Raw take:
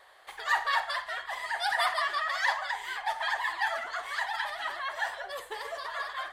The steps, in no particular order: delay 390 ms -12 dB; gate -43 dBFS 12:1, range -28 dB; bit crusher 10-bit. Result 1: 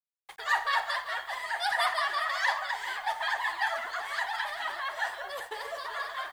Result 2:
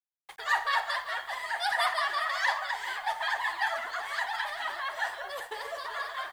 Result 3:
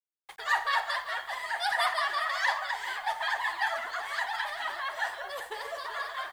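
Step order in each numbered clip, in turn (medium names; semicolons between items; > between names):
gate > bit crusher > delay; gate > delay > bit crusher; delay > gate > bit crusher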